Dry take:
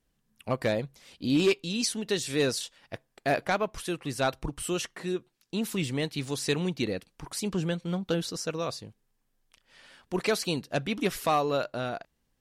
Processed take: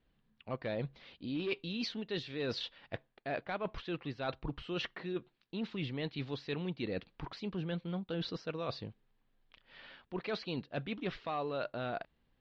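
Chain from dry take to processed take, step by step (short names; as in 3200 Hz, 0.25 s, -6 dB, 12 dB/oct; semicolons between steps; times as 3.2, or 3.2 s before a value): steep low-pass 4100 Hz 36 dB/oct; reverse; compressor 6:1, threshold -36 dBFS, peak gain reduction 15.5 dB; reverse; gain +1 dB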